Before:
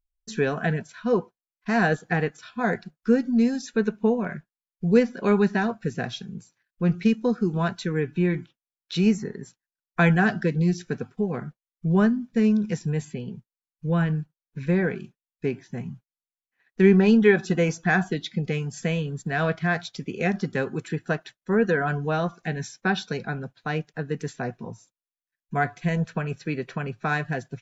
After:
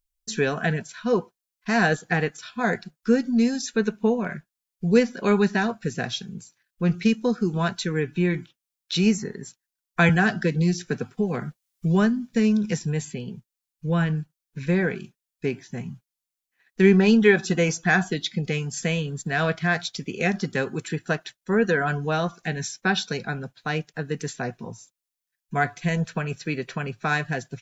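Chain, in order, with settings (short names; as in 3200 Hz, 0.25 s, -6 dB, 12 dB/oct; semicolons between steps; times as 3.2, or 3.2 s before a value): high shelf 2900 Hz +9.5 dB; 10.09–12.84 three-band squash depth 40%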